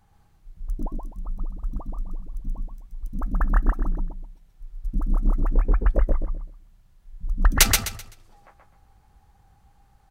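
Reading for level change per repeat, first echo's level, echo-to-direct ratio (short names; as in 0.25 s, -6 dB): -11.0 dB, -3.5 dB, -3.0 dB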